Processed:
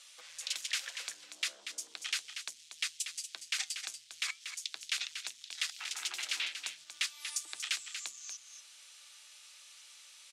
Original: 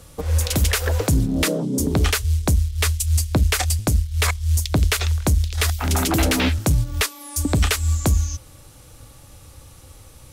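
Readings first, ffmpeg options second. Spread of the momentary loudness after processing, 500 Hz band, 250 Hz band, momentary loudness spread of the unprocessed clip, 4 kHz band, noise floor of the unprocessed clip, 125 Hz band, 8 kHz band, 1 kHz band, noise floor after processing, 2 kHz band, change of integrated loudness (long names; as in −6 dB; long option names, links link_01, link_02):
18 LU, −37.0 dB, below −40 dB, 3 LU, −9.0 dB, −46 dBFS, below −40 dB, −13.0 dB, −24.0 dB, −58 dBFS, −12.5 dB, −17.0 dB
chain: -filter_complex "[0:a]highshelf=frequency=5400:gain=-8.5,acompressor=threshold=-32dB:ratio=2,asoftclip=type=tanh:threshold=-22dB,asuperpass=centerf=4600:order=4:qfactor=0.73,afreqshift=37,asplit=2[link_01][link_02];[link_02]aecho=0:1:237:0.376[link_03];[link_01][link_03]amix=inputs=2:normalize=0,flanger=delay=0.3:depth=5.2:regen=-85:speed=0.37:shape=sinusoidal,volume=7dB"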